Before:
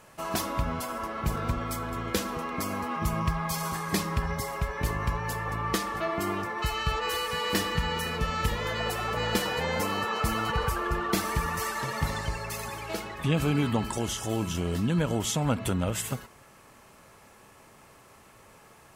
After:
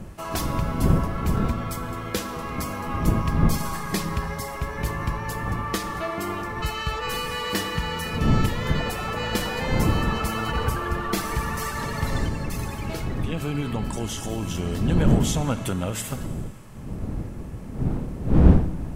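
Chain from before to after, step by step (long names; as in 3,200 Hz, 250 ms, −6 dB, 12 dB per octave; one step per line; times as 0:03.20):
wind on the microphone 170 Hz −27 dBFS
0:12.25–0:14.43: downward compressor 2.5 to 1, threshold −26 dBFS, peak gain reduction 6.5 dB
four-comb reverb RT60 2.1 s, combs from 28 ms, DRR 12.5 dB
level +1 dB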